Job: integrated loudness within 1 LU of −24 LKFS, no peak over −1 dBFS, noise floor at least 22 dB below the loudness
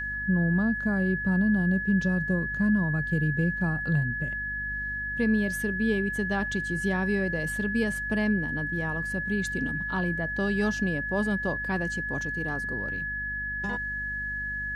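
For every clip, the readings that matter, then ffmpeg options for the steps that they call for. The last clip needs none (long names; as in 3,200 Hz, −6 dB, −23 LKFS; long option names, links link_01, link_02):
mains hum 50 Hz; hum harmonics up to 250 Hz; level of the hum −39 dBFS; interfering tone 1,700 Hz; level of the tone −30 dBFS; integrated loudness −27.5 LKFS; sample peak −15.5 dBFS; target loudness −24.0 LKFS
→ -af "bandreject=frequency=50:width_type=h:width=6,bandreject=frequency=100:width_type=h:width=6,bandreject=frequency=150:width_type=h:width=6,bandreject=frequency=200:width_type=h:width=6,bandreject=frequency=250:width_type=h:width=6"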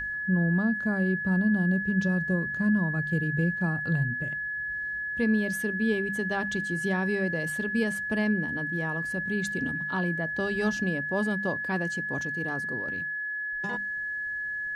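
mains hum none found; interfering tone 1,700 Hz; level of the tone −30 dBFS
→ -af "bandreject=frequency=1700:width=30"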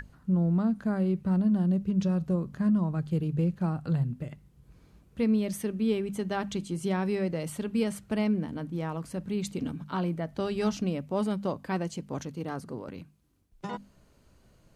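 interfering tone none found; integrated loudness −30.0 LKFS; sample peak −17.0 dBFS; target loudness −24.0 LKFS
→ -af "volume=6dB"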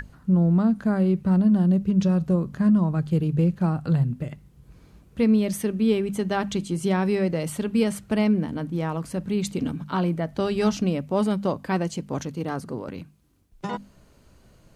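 integrated loudness −24.0 LKFS; sample peak −11.0 dBFS; background noise floor −56 dBFS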